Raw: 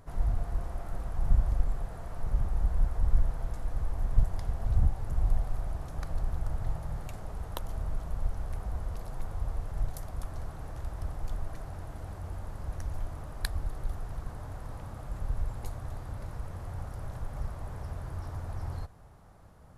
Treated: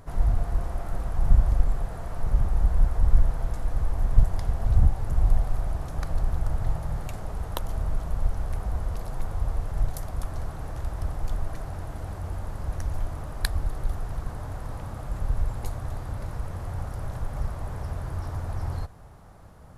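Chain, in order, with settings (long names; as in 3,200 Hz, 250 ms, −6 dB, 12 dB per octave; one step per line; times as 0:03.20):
level +6 dB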